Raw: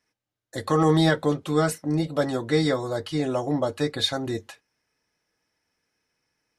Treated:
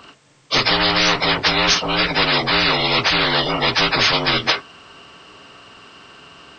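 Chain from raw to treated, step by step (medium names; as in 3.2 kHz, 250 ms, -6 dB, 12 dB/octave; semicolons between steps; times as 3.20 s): frequency axis rescaled in octaves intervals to 79%; spectrum-flattening compressor 10:1; trim +6.5 dB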